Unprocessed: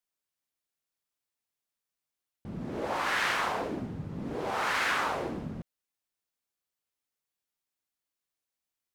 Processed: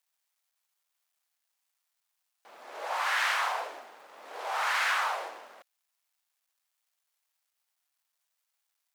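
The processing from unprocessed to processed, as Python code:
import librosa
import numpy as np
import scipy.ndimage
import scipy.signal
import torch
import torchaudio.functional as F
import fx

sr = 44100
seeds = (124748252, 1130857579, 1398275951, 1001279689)

y = fx.law_mismatch(x, sr, coded='mu')
y = scipy.signal.sosfilt(scipy.signal.butter(4, 660.0, 'highpass', fs=sr, output='sos'), y)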